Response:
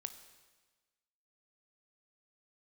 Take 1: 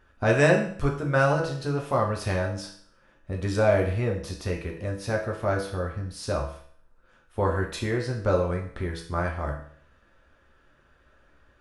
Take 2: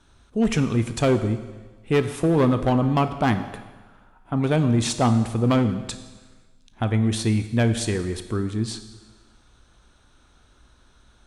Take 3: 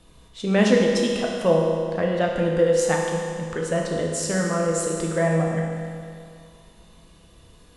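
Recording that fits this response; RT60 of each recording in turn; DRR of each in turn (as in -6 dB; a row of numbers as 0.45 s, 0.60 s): 2; 0.55 s, 1.3 s, 2.3 s; 0.0 dB, 9.0 dB, -1.5 dB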